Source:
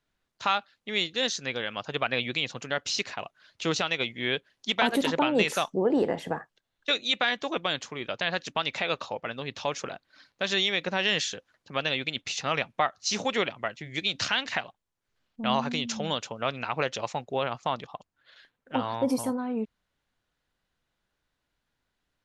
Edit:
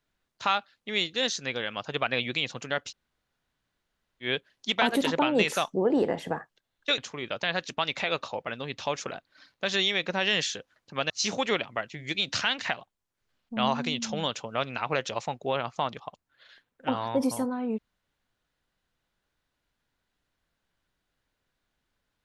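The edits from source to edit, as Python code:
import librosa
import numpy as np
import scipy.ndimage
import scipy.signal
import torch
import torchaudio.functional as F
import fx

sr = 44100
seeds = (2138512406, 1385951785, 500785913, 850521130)

y = fx.edit(x, sr, fx.room_tone_fill(start_s=2.88, length_s=1.37, crossfade_s=0.1),
    fx.cut(start_s=6.98, length_s=0.78),
    fx.cut(start_s=11.88, length_s=1.09), tone=tone)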